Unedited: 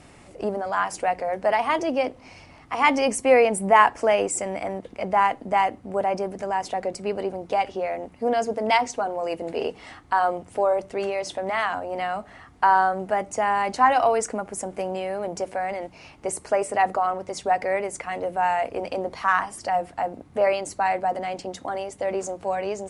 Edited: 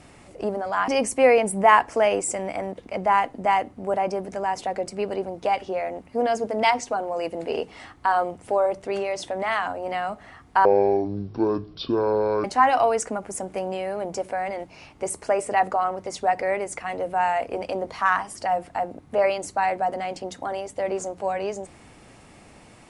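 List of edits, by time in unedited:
0:00.88–0:02.95: remove
0:12.72–0:13.67: play speed 53%

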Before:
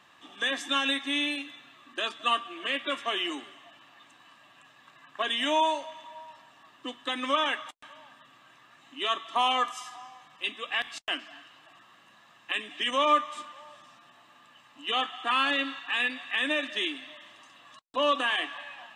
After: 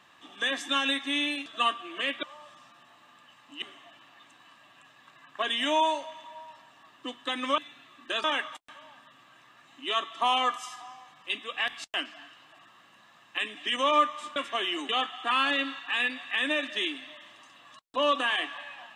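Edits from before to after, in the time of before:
0:01.46–0:02.12: move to 0:07.38
0:02.89–0:03.42: swap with 0:13.50–0:14.89

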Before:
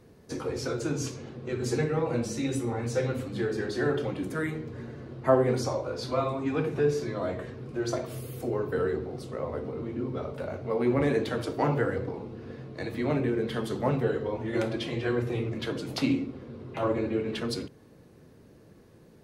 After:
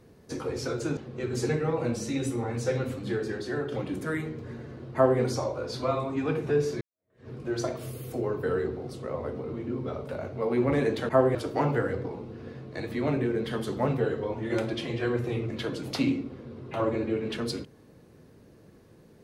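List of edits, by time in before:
0:00.97–0:01.26: remove
0:03.38–0:04.01: fade out, to −6 dB
0:05.23–0:05.49: duplicate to 0:11.38
0:07.10–0:07.57: fade in exponential

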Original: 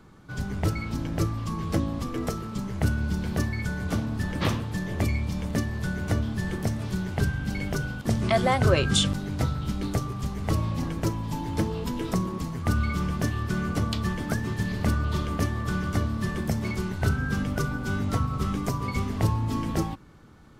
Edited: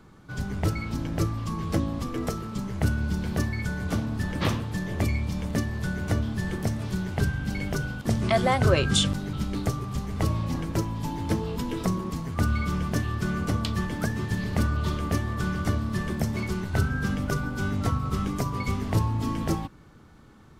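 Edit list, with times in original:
0:09.33–0:09.61: remove

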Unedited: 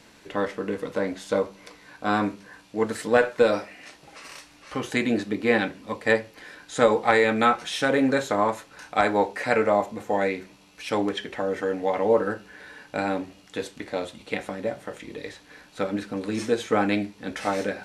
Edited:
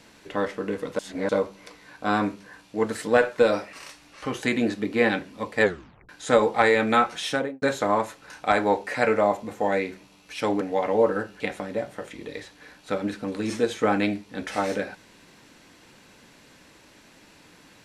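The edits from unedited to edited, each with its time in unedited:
0:00.99–0:01.29: reverse
0:03.73–0:04.22: remove
0:06.11: tape stop 0.47 s
0:07.76–0:08.11: fade out and dull
0:11.10–0:11.72: remove
0:12.51–0:14.29: remove

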